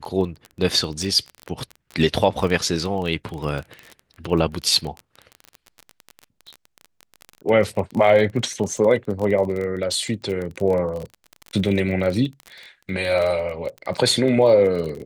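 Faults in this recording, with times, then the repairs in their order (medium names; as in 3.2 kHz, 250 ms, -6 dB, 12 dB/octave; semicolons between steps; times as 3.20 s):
crackle 25 per s -26 dBFS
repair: de-click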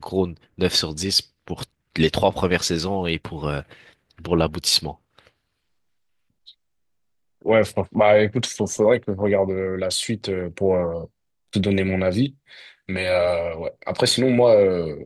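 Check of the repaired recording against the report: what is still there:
nothing left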